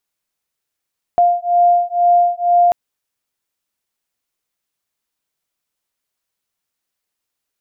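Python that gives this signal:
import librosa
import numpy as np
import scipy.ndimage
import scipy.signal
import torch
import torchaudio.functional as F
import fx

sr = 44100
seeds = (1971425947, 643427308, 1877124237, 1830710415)

y = fx.two_tone_beats(sr, length_s=1.54, hz=700.0, beat_hz=2.1, level_db=-13.5)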